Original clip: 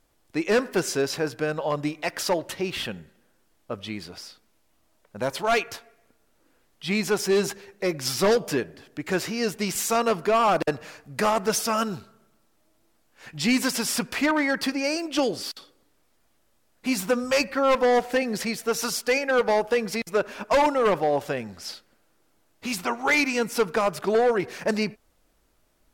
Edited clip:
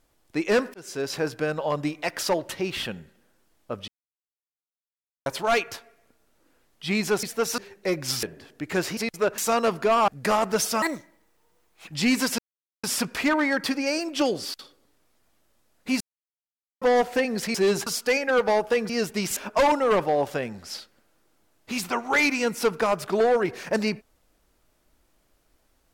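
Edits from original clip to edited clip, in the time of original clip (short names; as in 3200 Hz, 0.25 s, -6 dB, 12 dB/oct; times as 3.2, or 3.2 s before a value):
0.74–1.21 fade in
3.88–5.26 mute
7.23–7.55 swap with 18.52–18.87
8.2–8.6 cut
9.34–9.81 swap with 19.9–20.31
10.51–11.02 cut
11.76–13.3 speed 146%
13.81 insert silence 0.45 s
16.98–17.79 mute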